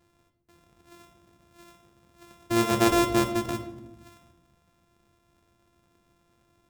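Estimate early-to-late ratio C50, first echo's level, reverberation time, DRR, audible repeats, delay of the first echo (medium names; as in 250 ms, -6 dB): 10.0 dB, no echo, 0.95 s, 6.5 dB, no echo, no echo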